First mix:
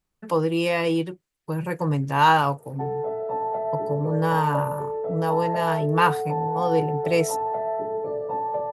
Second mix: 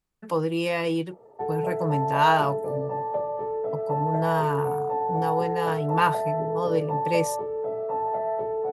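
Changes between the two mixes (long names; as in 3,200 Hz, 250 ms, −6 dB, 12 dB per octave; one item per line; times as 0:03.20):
speech −3.0 dB
background: entry −1.40 s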